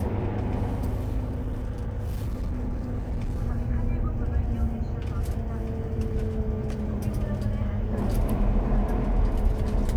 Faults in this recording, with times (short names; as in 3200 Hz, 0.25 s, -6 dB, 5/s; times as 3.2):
1.26–3.4 clipped -25 dBFS